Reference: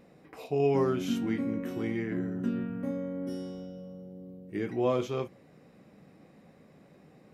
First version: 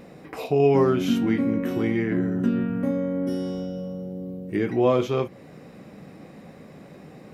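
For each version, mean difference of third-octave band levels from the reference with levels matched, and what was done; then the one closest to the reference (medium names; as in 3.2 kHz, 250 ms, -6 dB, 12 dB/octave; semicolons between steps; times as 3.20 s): 2.0 dB: dynamic bell 7.6 kHz, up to -5 dB, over -60 dBFS, Q 0.97; in parallel at 0 dB: compression, threshold -39 dBFS, peak gain reduction 16 dB; on the sum: trim +6 dB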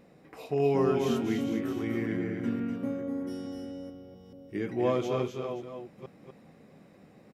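3.5 dB: chunks repeated in reverse 433 ms, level -9.5 dB; on a send: delay 248 ms -5.5 dB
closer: first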